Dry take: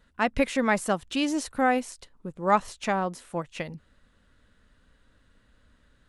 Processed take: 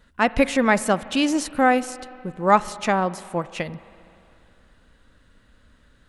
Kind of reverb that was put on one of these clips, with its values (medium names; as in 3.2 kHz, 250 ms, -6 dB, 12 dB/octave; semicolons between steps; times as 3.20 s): spring tank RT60 2.8 s, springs 40/58 ms, chirp 35 ms, DRR 17 dB; trim +5.5 dB